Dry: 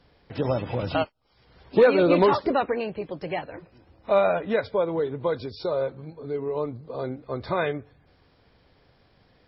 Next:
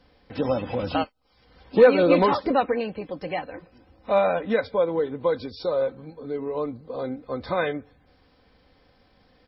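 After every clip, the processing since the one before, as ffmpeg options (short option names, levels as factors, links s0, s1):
-af "aecho=1:1:3.9:0.48"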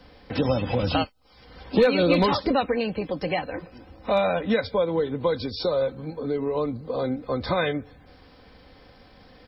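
-filter_complex "[0:a]acrossover=split=160|3000[s0][s1][s2];[s1]acompressor=threshold=0.0141:ratio=2[s3];[s0][s3][s2]amix=inputs=3:normalize=0,volume=2.66"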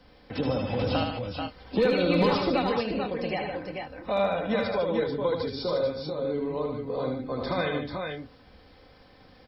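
-af "aecho=1:1:76|151|438|464:0.596|0.355|0.562|0.237,volume=0.531"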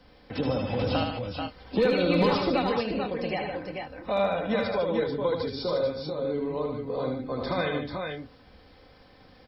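-af anull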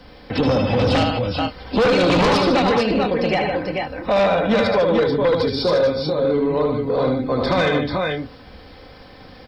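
-af "aeval=exprs='0.282*sin(PI/2*2.82*val(0)/0.282)':c=same,volume=0.891"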